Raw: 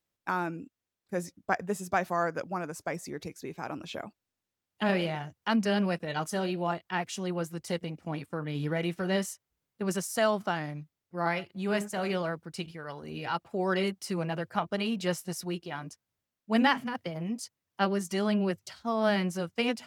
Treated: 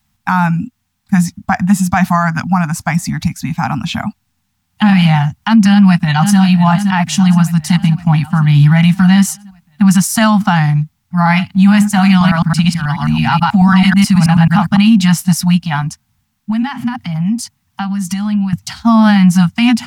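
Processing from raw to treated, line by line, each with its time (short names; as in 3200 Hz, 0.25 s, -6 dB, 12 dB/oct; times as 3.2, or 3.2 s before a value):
5.7–6.38 echo throw 0.52 s, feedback 60%, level -12 dB
12.1–14.77 reverse delay 0.108 s, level 0 dB
15.81–18.53 compressor, threshold -39 dBFS
whole clip: elliptic band-stop 240–770 Hz, stop band 40 dB; low shelf 460 Hz +10.5 dB; maximiser +20.5 dB; gain -1 dB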